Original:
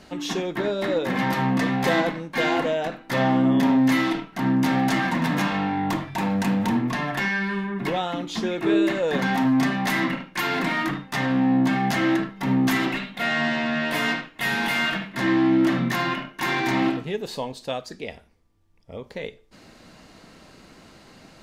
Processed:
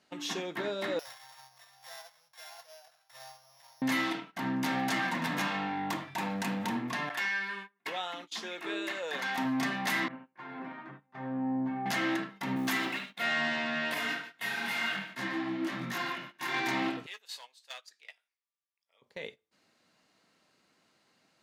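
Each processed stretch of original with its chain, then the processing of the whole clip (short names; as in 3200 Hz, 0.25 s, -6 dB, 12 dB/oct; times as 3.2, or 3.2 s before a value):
0.99–3.82 sample sorter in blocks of 8 samples + Chebyshev band-stop 110–660 Hz, order 3 + compressor 2.5:1, threshold -43 dBFS
7.09–9.38 HPF 780 Hz 6 dB/oct + gate with hold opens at -24 dBFS, closes at -27 dBFS
10.08–11.86 LPF 1300 Hz + resonator 130 Hz, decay 0.18 s, mix 90%
12.56–13.24 G.711 law mismatch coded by A + HPF 120 Hz
13.94–16.54 feedback echo 0.147 s, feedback 26%, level -13 dB + detuned doubles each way 33 cents
17.06–19.02 overloaded stage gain 22.5 dB + HPF 1400 Hz + doubler 18 ms -13 dB
whole clip: HPF 120 Hz; gate -38 dBFS, range -13 dB; tilt shelf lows -4 dB, about 640 Hz; gain -8.5 dB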